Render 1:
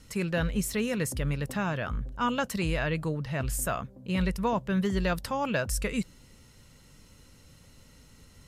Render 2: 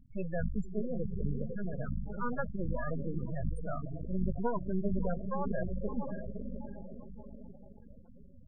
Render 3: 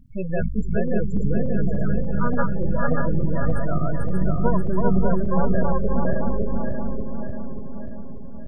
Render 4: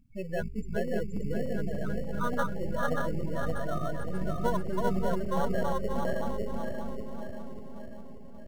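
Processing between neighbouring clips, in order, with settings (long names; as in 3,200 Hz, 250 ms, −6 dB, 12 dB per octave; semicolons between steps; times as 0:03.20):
feedback delay with all-pass diffusion 577 ms, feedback 50%, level −5 dB; half-wave rectification; gate on every frequency bin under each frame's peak −15 dB strong
feedback delay that plays each chunk backwards 292 ms, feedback 69%, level −1 dB; level +8.5 dB
low-shelf EQ 330 Hz −11.5 dB; hum removal 132.8 Hz, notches 3; in parallel at −11 dB: decimation without filtering 18×; on the sum: level −4 dB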